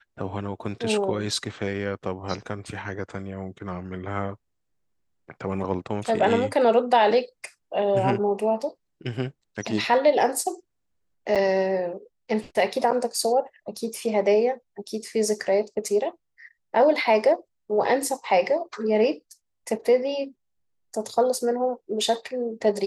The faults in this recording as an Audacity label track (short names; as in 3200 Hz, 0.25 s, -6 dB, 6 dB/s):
11.350000	11.360000	gap 7.1 ms